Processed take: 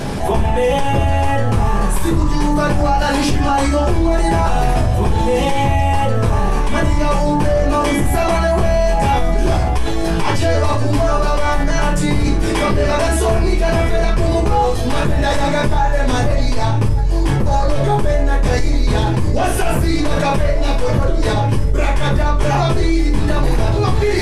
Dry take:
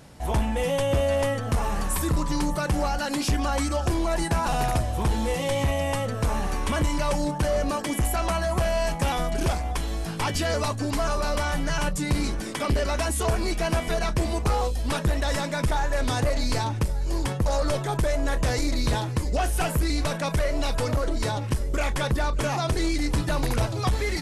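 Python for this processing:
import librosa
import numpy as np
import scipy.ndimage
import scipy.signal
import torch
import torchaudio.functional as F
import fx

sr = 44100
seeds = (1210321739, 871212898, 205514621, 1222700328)

y = fx.high_shelf(x, sr, hz=7700.0, db=-7.5)
y = fx.room_shoebox(y, sr, seeds[0], volume_m3=38.0, walls='mixed', distance_m=1.3)
y = fx.env_flatten(y, sr, amount_pct=70)
y = F.gain(torch.from_numpy(y), -6.5).numpy()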